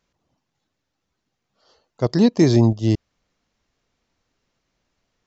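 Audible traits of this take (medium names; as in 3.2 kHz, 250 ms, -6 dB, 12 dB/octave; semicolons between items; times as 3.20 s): noise floor -78 dBFS; spectral tilt -8.5 dB/octave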